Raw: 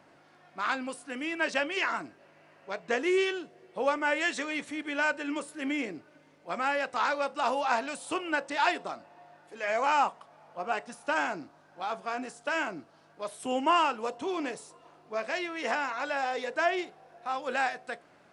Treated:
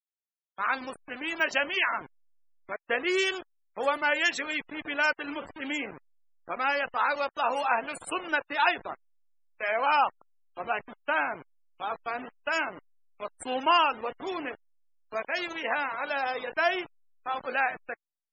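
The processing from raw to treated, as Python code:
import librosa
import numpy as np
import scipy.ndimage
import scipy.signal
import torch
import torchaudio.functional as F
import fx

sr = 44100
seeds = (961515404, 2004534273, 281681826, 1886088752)

y = fx.delta_hold(x, sr, step_db=-34.0)
y = fx.spec_topn(y, sr, count=64)
y = fx.riaa(y, sr, side='recording')
y = y * librosa.db_to_amplitude(2.0)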